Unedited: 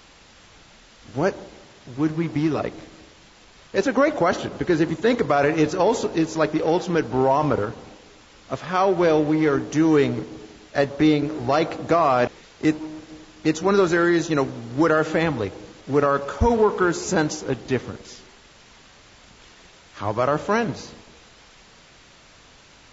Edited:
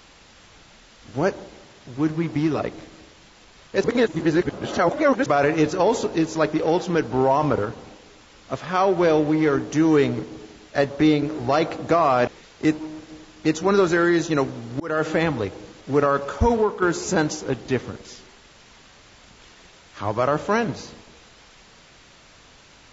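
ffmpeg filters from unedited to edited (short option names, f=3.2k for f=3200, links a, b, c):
-filter_complex "[0:a]asplit=5[a][b][c][d][e];[a]atrim=end=3.842[f];[b]atrim=start=3.838:end=5.262,asetpts=PTS-STARTPTS,areverse[g];[c]atrim=start=5.258:end=14.8,asetpts=PTS-STARTPTS,afade=t=out:st=9.538:d=0.004:c=hsin[h];[d]atrim=start=14.8:end=16.82,asetpts=PTS-STARTPTS,afade=t=in:d=0.25,afade=t=out:st=1.69:d=0.33:silence=0.398107[i];[e]atrim=start=16.82,asetpts=PTS-STARTPTS,afade=t=in:d=0.004:c=hsin:silence=0.398107[j];[f][g]acrossfade=d=0.004:c1=hsin:c2=hsin[k];[h][i][j]concat=n=3:v=0:a=1[l];[k][l]acrossfade=d=0.004:c1=hsin:c2=hsin"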